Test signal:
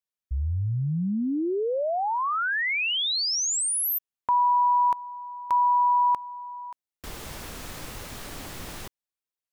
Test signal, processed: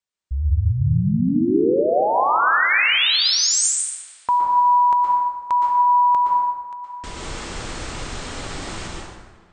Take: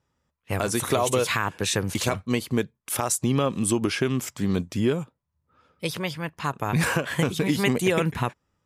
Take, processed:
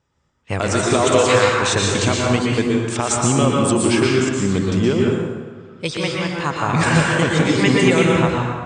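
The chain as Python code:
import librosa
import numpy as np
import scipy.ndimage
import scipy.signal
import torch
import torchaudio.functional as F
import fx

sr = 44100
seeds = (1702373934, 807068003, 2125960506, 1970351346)

y = scipy.signal.sosfilt(scipy.signal.ellip(6, 1.0, 60, 8800.0, 'lowpass', fs=sr, output='sos'), x)
y = fx.echo_wet_lowpass(y, sr, ms=72, feedback_pct=84, hz=3300.0, wet_db=-22.5)
y = fx.rev_plate(y, sr, seeds[0], rt60_s=1.4, hf_ratio=0.6, predelay_ms=105, drr_db=-2.0)
y = y * 10.0 ** (5.0 / 20.0)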